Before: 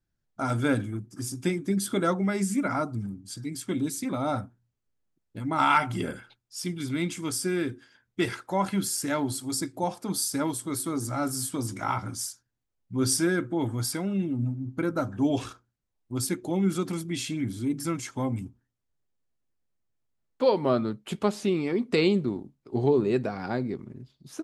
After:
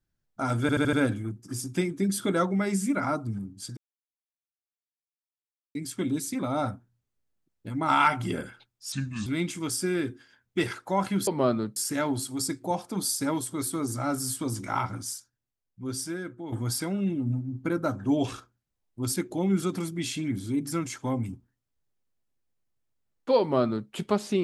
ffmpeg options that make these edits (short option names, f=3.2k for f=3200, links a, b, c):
-filter_complex "[0:a]asplit=11[a][b][c][d][e][f][g][h][i][j][k];[a]atrim=end=0.692[l];[b]atrim=start=0.608:end=0.692[m];[c]atrim=start=0.608:end=0.692[n];[d]atrim=start=0.608:end=0.692[o];[e]atrim=start=0.608:end=3.45,asetpts=PTS-STARTPTS,afade=t=out:st=2.838:d=0.004:c=hsin,apad=pad_dur=1.98[p];[f]atrim=start=3.45:end=6.624,asetpts=PTS-STARTPTS,afade=t=in:d=0.004:c=hsin[q];[g]atrim=start=6.62:end=6.88,asetpts=PTS-STARTPTS,asetrate=33516,aresample=44100[r];[h]atrim=start=6.876:end=8.892[s];[i]atrim=start=20.528:end=21.022[t];[j]atrim=start=8.888:end=13.65,asetpts=PTS-STARTPTS,afade=t=out:st=3.092:d=1.67:c=qua:silence=0.298538[u];[k]atrim=start=13.65,asetpts=PTS-STARTPTS,afade=t=in:d=0.004:c=hsin:silence=0.298538[v];[l][m]acrossfade=d=0.004:c1=hsin:c2=hsin[w];[w][n]acrossfade=d=0.004:c1=hsin:c2=hsin[x];[x][o]acrossfade=d=0.004:c1=hsin:c2=hsin[y];[p][q]concat=n=2:v=0:a=1[z];[y][z]acrossfade=d=0.004:c1=hsin:c2=hsin[aa];[aa][r]acrossfade=d=0.004:c1=hsin:c2=hsin[ab];[ab][s]acrossfade=d=0.004:c1=hsin:c2=hsin[ac];[ac][t]acrossfade=d=0.004:c1=hsin:c2=hsin[ad];[u][v]concat=n=2:v=0:a=1[ae];[ad][ae]acrossfade=d=0.004:c1=hsin:c2=hsin"